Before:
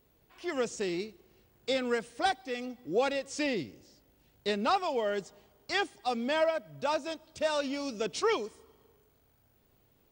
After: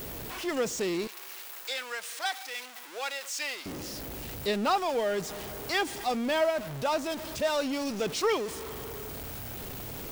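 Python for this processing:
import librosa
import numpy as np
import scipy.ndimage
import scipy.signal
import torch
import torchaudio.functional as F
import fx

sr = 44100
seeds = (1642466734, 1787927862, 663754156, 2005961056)

y = x + 0.5 * 10.0 ** (-33.5 / 20.0) * np.sign(x)
y = fx.highpass(y, sr, hz=1100.0, slope=12, at=(1.07, 3.66))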